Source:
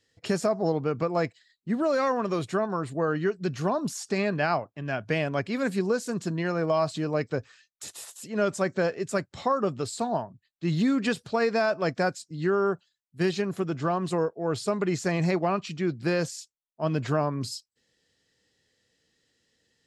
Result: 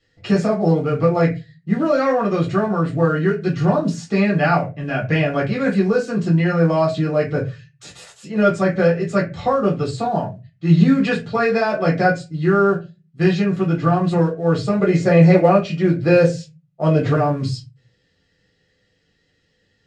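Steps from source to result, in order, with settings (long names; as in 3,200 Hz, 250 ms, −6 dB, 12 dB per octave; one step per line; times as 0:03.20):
0:14.79–0:17.15: parametric band 530 Hz +9.5 dB 0.57 octaves
noise that follows the level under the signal 31 dB
high-frequency loss of the air 110 metres
convolution reverb RT60 0.25 s, pre-delay 5 ms, DRR −4 dB
level +1.5 dB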